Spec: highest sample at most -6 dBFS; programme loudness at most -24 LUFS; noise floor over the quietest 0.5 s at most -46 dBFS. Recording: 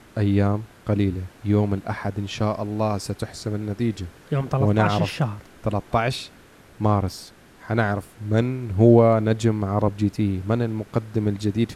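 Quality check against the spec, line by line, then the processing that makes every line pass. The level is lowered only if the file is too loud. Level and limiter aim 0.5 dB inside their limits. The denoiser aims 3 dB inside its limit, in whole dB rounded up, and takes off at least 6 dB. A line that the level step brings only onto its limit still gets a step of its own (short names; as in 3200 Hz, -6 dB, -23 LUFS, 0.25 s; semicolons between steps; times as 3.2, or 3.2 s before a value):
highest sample -4.5 dBFS: fail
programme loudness -23.0 LUFS: fail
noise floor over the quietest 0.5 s -49 dBFS: OK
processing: gain -1.5 dB; limiter -6.5 dBFS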